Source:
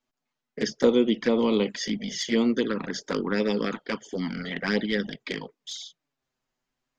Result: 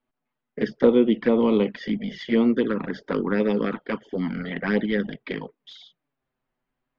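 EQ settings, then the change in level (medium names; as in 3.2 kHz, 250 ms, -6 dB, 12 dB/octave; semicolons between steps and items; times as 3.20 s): distance through air 410 m; +4.0 dB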